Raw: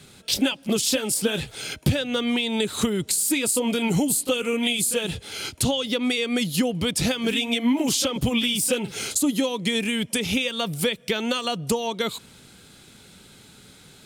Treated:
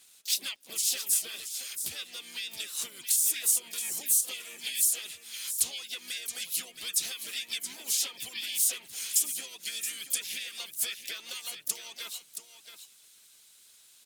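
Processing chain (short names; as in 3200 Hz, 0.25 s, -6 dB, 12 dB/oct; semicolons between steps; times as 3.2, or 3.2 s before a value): HPF 47 Hz; bell 130 Hz -7 dB 1.1 oct; harmonic-percussive split harmonic -8 dB; pre-emphasis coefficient 0.97; crackle 66/s -51 dBFS; on a send: echo 0.673 s -10 dB; on the sum: harmoniser -5 st -8 dB, +5 st -9 dB, +7 st -12 dB; gain -2 dB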